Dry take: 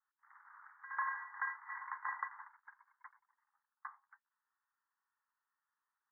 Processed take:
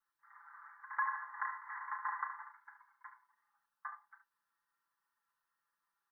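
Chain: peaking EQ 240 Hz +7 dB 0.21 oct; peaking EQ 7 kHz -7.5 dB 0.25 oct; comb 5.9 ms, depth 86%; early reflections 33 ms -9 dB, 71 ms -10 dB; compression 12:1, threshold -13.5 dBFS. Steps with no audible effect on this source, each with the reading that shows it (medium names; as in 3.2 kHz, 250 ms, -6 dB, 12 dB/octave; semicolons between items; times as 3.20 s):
peaking EQ 240 Hz: input has nothing below 720 Hz; peaking EQ 7 kHz: input has nothing above 2.2 kHz; compression, threshold -13.5 dBFS: peak at its input -23.5 dBFS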